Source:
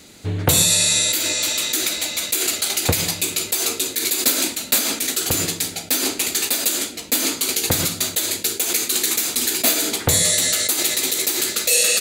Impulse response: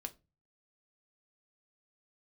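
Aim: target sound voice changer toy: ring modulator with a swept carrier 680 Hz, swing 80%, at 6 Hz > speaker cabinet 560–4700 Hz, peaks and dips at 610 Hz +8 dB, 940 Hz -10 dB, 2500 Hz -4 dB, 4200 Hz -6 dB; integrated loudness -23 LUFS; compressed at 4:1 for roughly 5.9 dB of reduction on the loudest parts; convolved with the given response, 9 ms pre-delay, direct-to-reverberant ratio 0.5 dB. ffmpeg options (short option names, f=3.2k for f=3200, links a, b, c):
-filter_complex "[0:a]acompressor=threshold=-20dB:ratio=4,asplit=2[a][b];[1:a]atrim=start_sample=2205,adelay=9[c];[b][c]afir=irnorm=-1:irlink=0,volume=2.5dB[d];[a][d]amix=inputs=2:normalize=0,aeval=exprs='val(0)*sin(2*PI*680*n/s+680*0.8/6*sin(2*PI*6*n/s))':c=same,highpass=560,equalizer=f=610:t=q:w=4:g=8,equalizer=f=940:t=q:w=4:g=-10,equalizer=f=2.5k:t=q:w=4:g=-4,equalizer=f=4.2k:t=q:w=4:g=-6,lowpass=f=4.7k:w=0.5412,lowpass=f=4.7k:w=1.3066,volume=6.5dB"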